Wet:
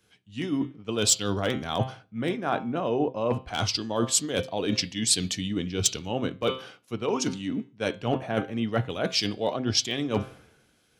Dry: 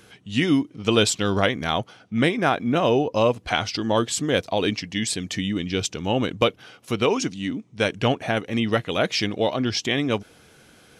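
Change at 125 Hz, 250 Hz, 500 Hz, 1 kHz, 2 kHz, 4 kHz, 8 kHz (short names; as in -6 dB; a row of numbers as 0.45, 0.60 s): -4.0, -5.5, -6.0, -6.0, -8.5, -2.5, +3.5 dB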